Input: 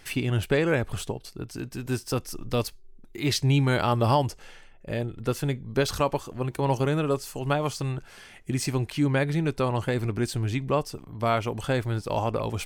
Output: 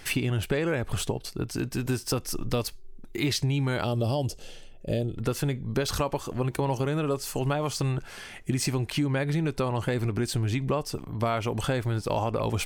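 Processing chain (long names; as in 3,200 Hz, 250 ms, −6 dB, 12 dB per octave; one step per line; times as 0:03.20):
0:03.84–0:05.18: flat-topped bell 1,400 Hz −12.5 dB
in parallel at −1 dB: brickwall limiter −20 dBFS, peak gain reduction 8.5 dB
on the sum: downward compressor, threshold −23 dBFS, peak gain reduction 8.5 dB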